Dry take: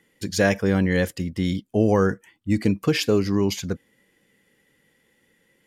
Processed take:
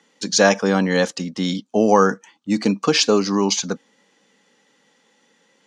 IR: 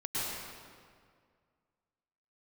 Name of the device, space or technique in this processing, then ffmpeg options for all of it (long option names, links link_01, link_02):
television speaker: -af "highpass=frequency=200:width=0.5412,highpass=frequency=200:width=1.3066,equalizer=frequency=350:width_type=q:width=4:gain=-7,equalizer=frequency=850:width_type=q:width=4:gain=7,equalizer=frequency=1200:width_type=q:width=4:gain=6,equalizer=frequency=2000:width_type=q:width=4:gain=-6,equalizer=frequency=4100:width_type=q:width=4:gain=6,equalizer=frequency=6100:width_type=q:width=4:gain=9,lowpass=frequency=7700:width=0.5412,lowpass=frequency=7700:width=1.3066,volume=5.5dB"